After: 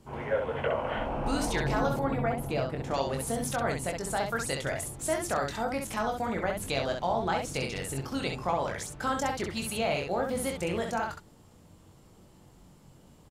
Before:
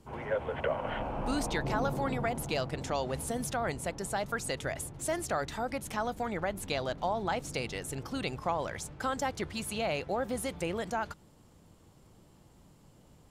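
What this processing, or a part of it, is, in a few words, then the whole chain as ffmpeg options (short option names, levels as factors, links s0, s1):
slapback doubling: -filter_complex "[0:a]asplit=3[s0][s1][s2];[s1]adelay=22,volume=0.531[s3];[s2]adelay=65,volume=0.596[s4];[s0][s3][s4]amix=inputs=3:normalize=0,asettb=1/sr,asplit=3[s5][s6][s7];[s5]atrim=end=1.994[s8];[s6]atrim=start=1.99:end=2.94,asetpts=PTS-STARTPTS,afade=t=in:d=0.004:c=qsin,afade=t=out:st=0.946:d=0.004:c=qsin,equalizer=f=6500:t=o:w=2.3:g=-12.5[s9];[s7]atrim=start=2.936[s10];[s8][s9]acrossfade=d=0.004:c1=hsin:c2=qsin[s11];[s11][s10]acrossfade=d=0.004:c1=qsin:c2=hsin,volume=1.12"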